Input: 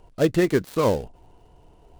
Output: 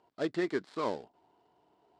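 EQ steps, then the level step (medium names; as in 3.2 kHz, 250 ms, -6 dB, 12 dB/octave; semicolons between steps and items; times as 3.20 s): cabinet simulation 310–6500 Hz, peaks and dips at 510 Hz -8 dB, 2.7 kHz -6 dB, 6.2 kHz -9 dB; -8.0 dB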